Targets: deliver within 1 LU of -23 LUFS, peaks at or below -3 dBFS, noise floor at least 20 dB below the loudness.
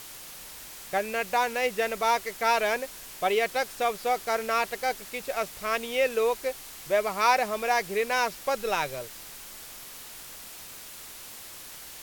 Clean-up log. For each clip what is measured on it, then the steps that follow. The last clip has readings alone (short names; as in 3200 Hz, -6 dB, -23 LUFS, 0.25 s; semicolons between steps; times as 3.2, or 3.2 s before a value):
noise floor -44 dBFS; noise floor target -48 dBFS; loudness -27.5 LUFS; peak -9.0 dBFS; loudness target -23.0 LUFS
-> denoiser 6 dB, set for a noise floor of -44 dBFS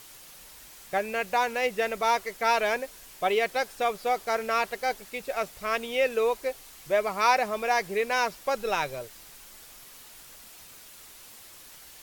noise floor -49 dBFS; loudness -27.5 LUFS; peak -9.0 dBFS; loudness target -23.0 LUFS
-> gain +4.5 dB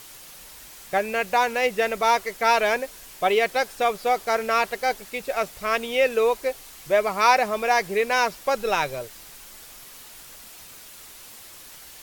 loudness -23.0 LUFS; peak -4.5 dBFS; noise floor -45 dBFS